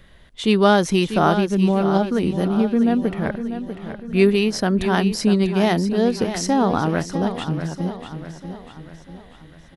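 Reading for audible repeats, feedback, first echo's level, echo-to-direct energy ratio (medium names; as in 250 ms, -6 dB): 4, 47%, -10.0 dB, -9.0 dB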